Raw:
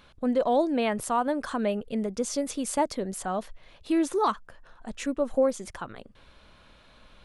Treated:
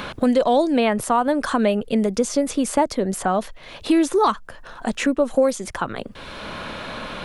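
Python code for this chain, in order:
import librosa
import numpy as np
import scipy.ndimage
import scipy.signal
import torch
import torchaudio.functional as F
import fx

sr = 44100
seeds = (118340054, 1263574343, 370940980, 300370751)

y = fx.band_squash(x, sr, depth_pct=70)
y = F.gain(torch.from_numpy(y), 7.5).numpy()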